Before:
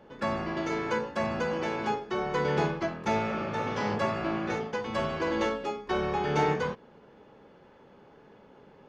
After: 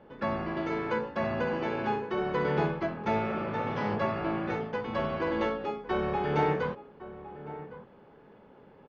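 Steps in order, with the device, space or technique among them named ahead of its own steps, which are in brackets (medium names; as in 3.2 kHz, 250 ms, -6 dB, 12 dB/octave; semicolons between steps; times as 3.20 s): 1.09–2.51 s: flutter echo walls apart 11.2 m, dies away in 0.5 s; shout across a valley (distance through air 220 m; echo from a far wall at 190 m, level -14 dB)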